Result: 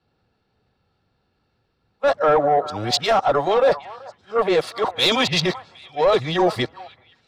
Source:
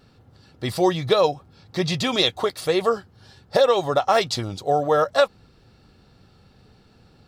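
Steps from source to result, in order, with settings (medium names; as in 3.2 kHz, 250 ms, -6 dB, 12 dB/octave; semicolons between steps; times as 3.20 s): reverse the whole clip; treble shelf 9.9 kHz -3.5 dB; band-stop 1.2 kHz, Q 27; overdrive pedal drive 20 dB, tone 1.3 kHz, clips at -1 dBFS; transient shaper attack -8 dB, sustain -3 dB; repeats whose band climbs or falls 383 ms, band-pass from 970 Hz, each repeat 1.4 oct, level -11.5 dB; peak limiter -12 dBFS, peak gain reduction 7.5 dB; three bands expanded up and down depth 70%; trim +1 dB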